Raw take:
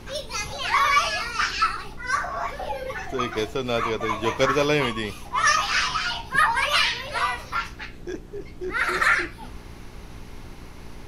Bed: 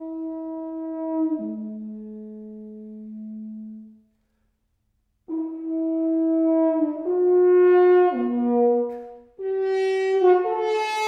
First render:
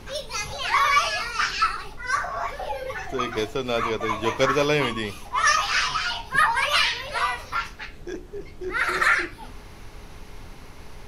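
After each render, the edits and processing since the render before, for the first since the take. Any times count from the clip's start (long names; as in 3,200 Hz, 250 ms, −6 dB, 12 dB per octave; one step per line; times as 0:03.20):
hum removal 60 Hz, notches 6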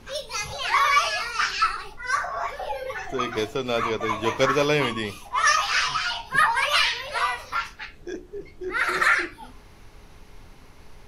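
noise reduction from a noise print 6 dB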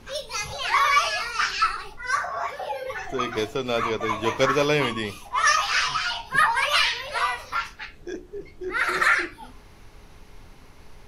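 0:02.16–0:02.86: high-pass filter 44 Hz → 120 Hz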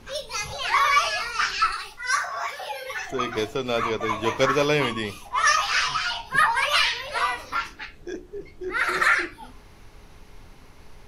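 0:01.72–0:03.11: tilt shelving filter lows −7.5 dB, about 1,200 Hz
0:07.16–0:07.84: parametric band 310 Hz +11.5 dB 0.51 octaves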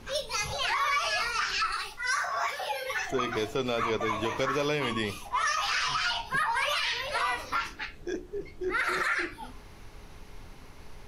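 downward compressor, threshold −22 dBFS, peak gain reduction 8 dB
brickwall limiter −19 dBFS, peak gain reduction 7.5 dB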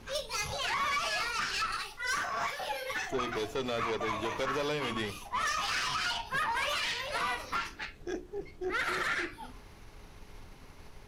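tube saturation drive 25 dB, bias 0.6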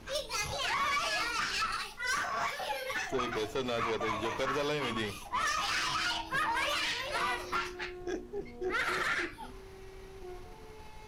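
mix in bed −30.5 dB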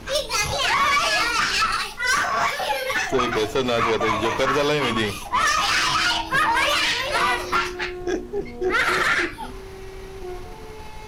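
level +12 dB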